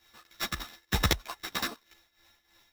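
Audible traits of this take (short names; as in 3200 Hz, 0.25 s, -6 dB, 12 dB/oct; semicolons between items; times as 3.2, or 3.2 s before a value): a buzz of ramps at a fixed pitch in blocks of 8 samples; tremolo triangle 3.2 Hz, depth 85%; aliases and images of a low sample rate 9300 Hz, jitter 0%; a shimmering, thickened sound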